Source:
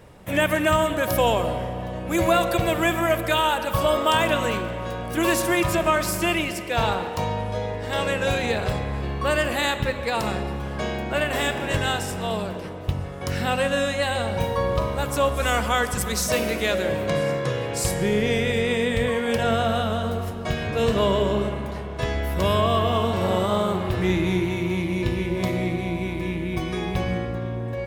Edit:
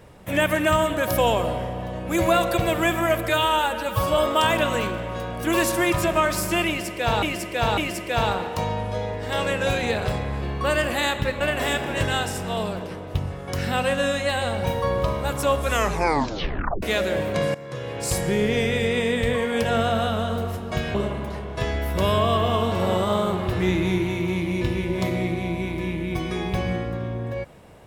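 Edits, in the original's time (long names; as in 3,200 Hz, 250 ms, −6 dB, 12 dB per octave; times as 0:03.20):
0:03.29–0:03.88: time-stretch 1.5×
0:06.38–0:06.93: repeat, 3 plays
0:10.01–0:11.14: remove
0:15.44: tape stop 1.12 s
0:17.28–0:17.89: fade in, from −18 dB
0:20.68–0:21.36: remove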